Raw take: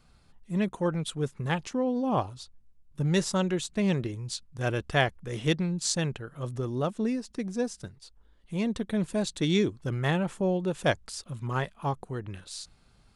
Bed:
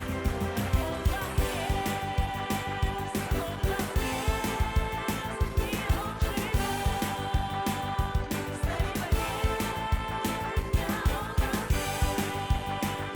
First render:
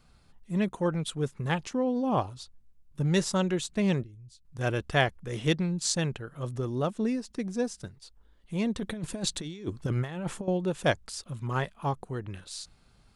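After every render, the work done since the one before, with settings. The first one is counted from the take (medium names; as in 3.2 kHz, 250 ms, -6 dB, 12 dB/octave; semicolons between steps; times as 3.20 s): 4.03–4.45 s: amplifier tone stack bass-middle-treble 10-0-1; 8.78–10.48 s: compressor with a negative ratio -31 dBFS, ratio -0.5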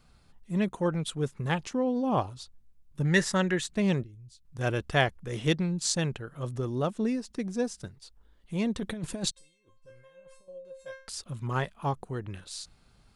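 3.05–3.68 s: peaking EQ 1.8 kHz +14 dB 0.4 oct; 9.31–11.08 s: feedback comb 530 Hz, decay 0.39 s, mix 100%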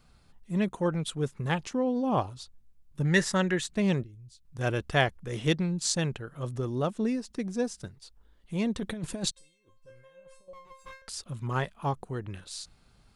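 10.53–11.02 s: comb filter that takes the minimum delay 0.8 ms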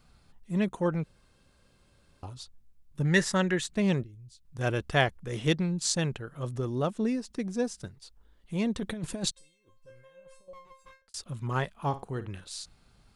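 1.04–2.23 s: room tone; 10.56–11.14 s: fade out; 11.72–12.28 s: flutter echo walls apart 9.3 m, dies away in 0.25 s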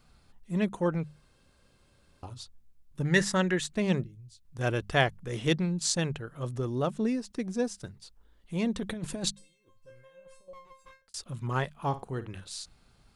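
hum notches 50/100/150/200 Hz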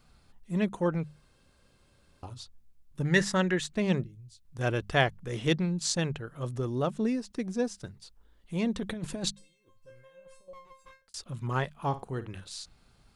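dynamic bell 9.7 kHz, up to -4 dB, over -54 dBFS, Q 1.1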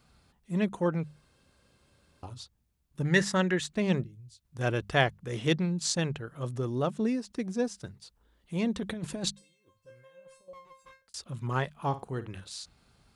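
high-pass 48 Hz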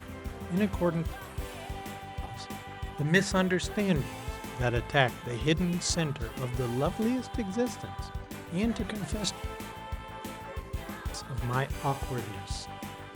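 add bed -10 dB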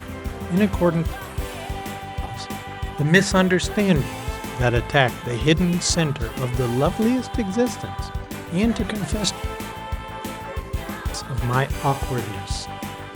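trim +9 dB; peak limiter -3 dBFS, peak gain reduction 2.5 dB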